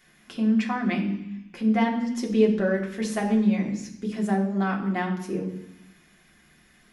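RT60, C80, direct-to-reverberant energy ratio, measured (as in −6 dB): 0.85 s, 10.5 dB, −2.0 dB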